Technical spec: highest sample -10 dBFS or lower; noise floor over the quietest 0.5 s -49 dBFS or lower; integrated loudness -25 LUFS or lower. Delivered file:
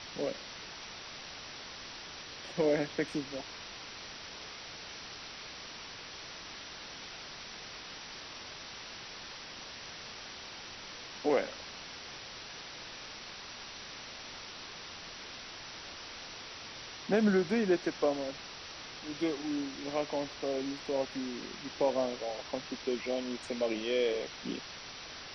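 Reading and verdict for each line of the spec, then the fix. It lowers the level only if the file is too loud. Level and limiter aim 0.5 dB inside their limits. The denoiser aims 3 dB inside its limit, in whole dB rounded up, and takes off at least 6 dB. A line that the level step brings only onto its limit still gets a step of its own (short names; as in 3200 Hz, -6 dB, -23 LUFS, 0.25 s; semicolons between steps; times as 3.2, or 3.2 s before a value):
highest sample -17.0 dBFS: OK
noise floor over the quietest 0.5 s -46 dBFS: fail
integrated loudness -37.0 LUFS: OK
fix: denoiser 6 dB, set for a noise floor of -46 dBFS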